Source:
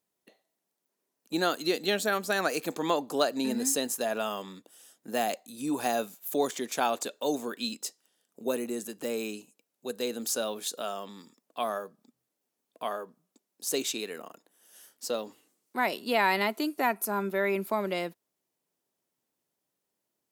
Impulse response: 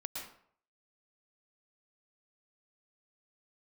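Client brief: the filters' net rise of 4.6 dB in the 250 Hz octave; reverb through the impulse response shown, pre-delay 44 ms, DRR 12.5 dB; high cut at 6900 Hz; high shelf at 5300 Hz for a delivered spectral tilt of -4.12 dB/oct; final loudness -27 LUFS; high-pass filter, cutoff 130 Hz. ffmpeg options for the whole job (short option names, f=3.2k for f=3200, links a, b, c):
-filter_complex "[0:a]highpass=130,lowpass=6.9k,equalizer=f=250:t=o:g=6,highshelf=f=5.3k:g=-4,asplit=2[a][b];[1:a]atrim=start_sample=2205,adelay=44[c];[b][c]afir=irnorm=-1:irlink=0,volume=-12.5dB[d];[a][d]amix=inputs=2:normalize=0,volume=2.5dB"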